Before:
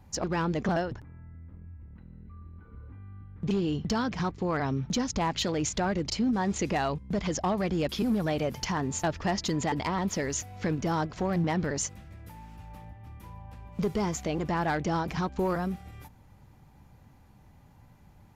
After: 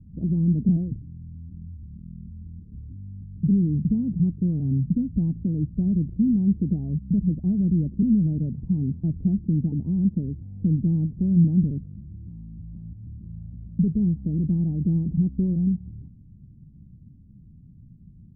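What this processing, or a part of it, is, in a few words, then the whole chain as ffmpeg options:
the neighbour's flat through the wall: -af "lowpass=frequency=260:width=0.5412,lowpass=frequency=260:width=1.3066,equalizer=frequency=170:width_type=o:width=0.87:gain=6,volume=5.5dB"

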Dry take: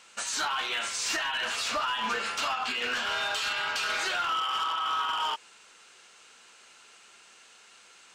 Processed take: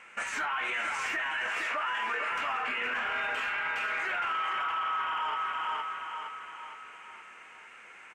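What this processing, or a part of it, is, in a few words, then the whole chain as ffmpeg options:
stacked limiters: -filter_complex "[0:a]highshelf=frequency=3000:width_type=q:width=3:gain=-11.5,asettb=1/sr,asplit=3[link_01][link_02][link_03];[link_01]atrim=end=1.474[link_04];[link_02]atrim=start=1.47:end=2.32,asetpts=PTS-STARTPTS,afade=type=in:duration=0.004:curve=qsin,afade=type=out:start_time=0.846:duration=0.004:curve=qsin,highpass=frequency=290:width=0.5412,highpass=frequency=290:width=1.3066[link_05];[link_03]atrim=start=2.316[link_06];[link_04][link_05]acrossfade=duration=0.004:curve1=hsin:curve2=qsin[link_07];[link_07][link_06]acrossfade=duration=0.004:curve1=qsin:curve2=hsin,aecho=1:1:464|928|1392|1856|2320|2784:0.398|0.199|0.0995|0.0498|0.0249|0.0124,alimiter=limit=-21dB:level=0:latency=1:release=287,alimiter=level_in=3dB:limit=-24dB:level=0:latency=1:release=11,volume=-3dB,volume=2.5dB"

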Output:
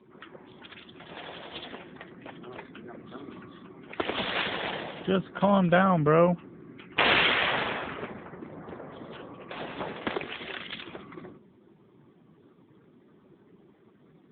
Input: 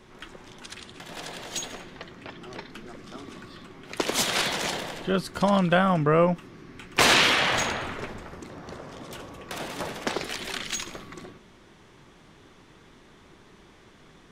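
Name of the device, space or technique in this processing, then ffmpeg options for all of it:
mobile call with aggressive noise cancelling: -filter_complex "[0:a]asettb=1/sr,asplit=3[link_01][link_02][link_03];[link_01]atrim=end=1.204[link_04];[link_02]atrim=start=1.2:end=1.92,asetpts=PTS-STARTPTS,afade=type=in:duration=0.004:curve=qsin,afade=type=out:start_time=0.716:duration=0.004:curve=qsin,lowshelf=frequency=79:gain=-4.5[link_05];[link_03]atrim=start=1.916[link_06];[link_04][link_05]acrossfade=duration=0.004:curve1=hsin:curve2=qsin[link_07];[link_07][link_06]acrossfade=duration=0.004:curve1=qsin:curve2=hsin,highpass=110,afftdn=noise_reduction=15:noise_floor=-50" -ar 8000 -c:a libopencore_amrnb -b:a 7950

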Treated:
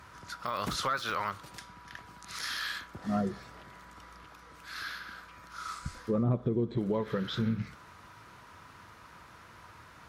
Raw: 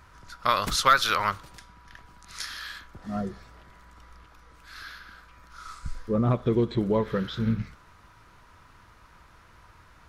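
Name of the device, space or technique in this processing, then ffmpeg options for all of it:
podcast mastering chain: -filter_complex "[0:a]asplit=3[link_01][link_02][link_03];[link_01]afade=type=out:start_time=6.22:duration=0.02[link_04];[link_02]tiltshelf=frequency=840:gain=7.5,afade=type=in:start_time=6.22:duration=0.02,afade=type=out:start_time=6.76:duration=0.02[link_05];[link_03]afade=type=in:start_time=6.76:duration=0.02[link_06];[link_04][link_05][link_06]amix=inputs=3:normalize=0,highpass=100,deesser=0.85,acompressor=threshold=-29dB:ratio=2,alimiter=limit=-23.5dB:level=0:latency=1:release=332,volume=3.5dB" -ar 44100 -c:a libmp3lame -b:a 96k

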